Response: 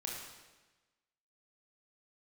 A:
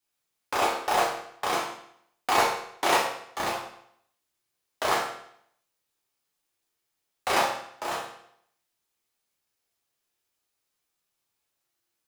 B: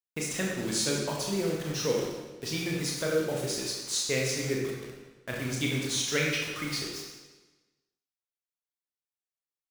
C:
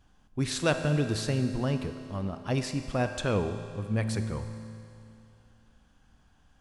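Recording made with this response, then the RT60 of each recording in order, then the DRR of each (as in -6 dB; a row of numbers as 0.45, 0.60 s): B; 0.70, 1.2, 2.6 s; -5.0, -2.5, 7.0 dB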